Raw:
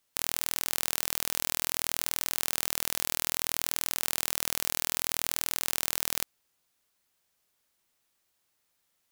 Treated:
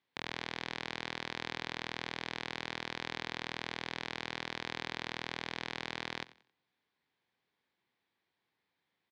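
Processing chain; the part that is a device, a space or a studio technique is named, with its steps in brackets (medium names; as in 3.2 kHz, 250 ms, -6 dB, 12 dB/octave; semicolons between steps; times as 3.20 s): frequency-shifting delay pedal into a guitar cabinet (frequency-shifting echo 90 ms, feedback 31%, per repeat +62 Hz, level -18.5 dB; cabinet simulation 110–3400 Hz, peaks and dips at 610 Hz -8 dB, 1.3 kHz -8 dB, 2.8 kHz -7 dB); trim +1.5 dB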